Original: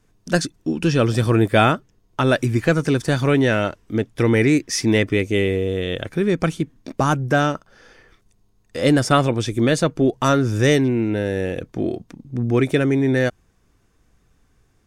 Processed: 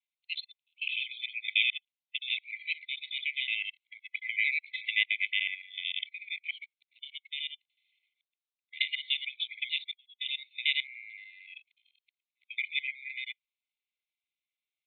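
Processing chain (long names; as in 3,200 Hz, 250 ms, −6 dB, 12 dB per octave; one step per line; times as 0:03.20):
reversed piece by piece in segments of 74 ms
noise reduction from a noise print of the clip's start 17 dB
linear-phase brick-wall band-pass 2,000–4,300 Hz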